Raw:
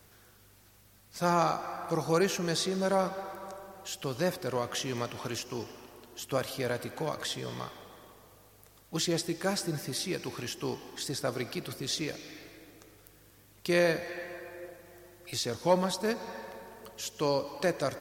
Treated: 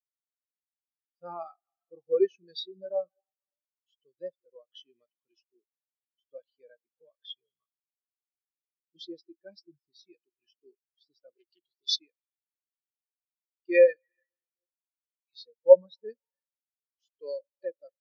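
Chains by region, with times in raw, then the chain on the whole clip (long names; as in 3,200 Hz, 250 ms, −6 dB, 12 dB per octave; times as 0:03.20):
0:11.35–0:11.96: bass and treble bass −2 dB, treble +9 dB + highs frequency-modulated by the lows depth 0.39 ms
whole clip: meter weighting curve D; every bin expanded away from the loudest bin 4 to 1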